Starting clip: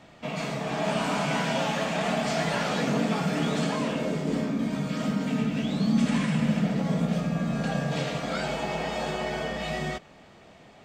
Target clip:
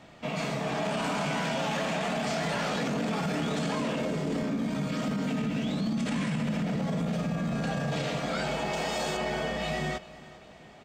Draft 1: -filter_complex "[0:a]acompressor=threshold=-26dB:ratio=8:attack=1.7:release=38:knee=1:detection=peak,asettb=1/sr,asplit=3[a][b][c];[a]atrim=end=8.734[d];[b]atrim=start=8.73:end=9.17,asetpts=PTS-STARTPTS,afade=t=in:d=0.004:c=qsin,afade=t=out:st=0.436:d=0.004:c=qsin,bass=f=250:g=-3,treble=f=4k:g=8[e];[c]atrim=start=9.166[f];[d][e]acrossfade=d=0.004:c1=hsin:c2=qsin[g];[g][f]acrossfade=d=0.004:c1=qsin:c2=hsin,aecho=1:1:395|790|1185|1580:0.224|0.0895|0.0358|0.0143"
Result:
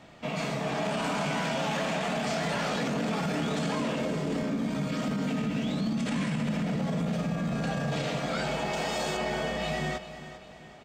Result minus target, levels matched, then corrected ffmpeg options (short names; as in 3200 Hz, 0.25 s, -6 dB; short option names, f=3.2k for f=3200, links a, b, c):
echo-to-direct +6 dB
-filter_complex "[0:a]acompressor=threshold=-26dB:ratio=8:attack=1.7:release=38:knee=1:detection=peak,asettb=1/sr,asplit=3[a][b][c];[a]atrim=end=8.734[d];[b]atrim=start=8.73:end=9.17,asetpts=PTS-STARTPTS,afade=t=in:d=0.004:c=qsin,afade=t=out:st=0.436:d=0.004:c=qsin,bass=f=250:g=-3,treble=f=4k:g=8[e];[c]atrim=start=9.166[f];[d][e]acrossfade=d=0.004:c1=hsin:c2=qsin[g];[g][f]acrossfade=d=0.004:c1=qsin:c2=hsin,aecho=1:1:395|790|1185:0.112|0.0449|0.018"